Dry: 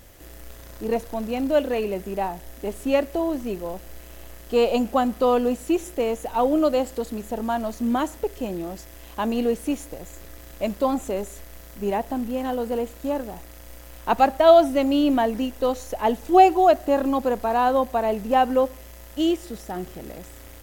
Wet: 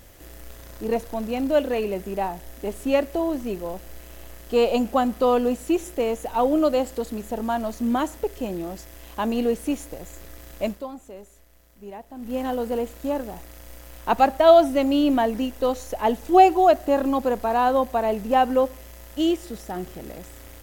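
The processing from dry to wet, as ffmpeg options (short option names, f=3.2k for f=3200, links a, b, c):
-filter_complex "[0:a]asplit=3[a][b][c];[a]atrim=end=10.91,asetpts=PTS-STARTPTS,afade=t=out:st=10.67:d=0.24:c=qua:silence=0.199526[d];[b]atrim=start=10.91:end=12.1,asetpts=PTS-STARTPTS,volume=-14dB[e];[c]atrim=start=12.1,asetpts=PTS-STARTPTS,afade=t=in:d=0.24:c=qua:silence=0.199526[f];[d][e][f]concat=n=3:v=0:a=1"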